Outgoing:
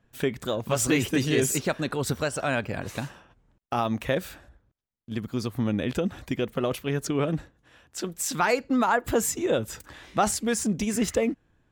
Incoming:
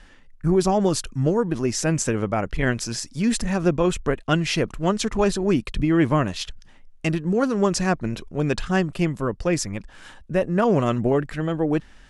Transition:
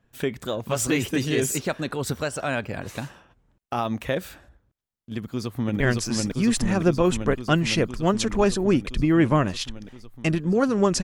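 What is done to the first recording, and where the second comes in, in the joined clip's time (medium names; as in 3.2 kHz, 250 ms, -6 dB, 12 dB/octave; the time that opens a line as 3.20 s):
outgoing
5.17–5.80 s: echo throw 510 ms, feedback 80%, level -1 dB
5.80 s: go over to incoming from 2.60 s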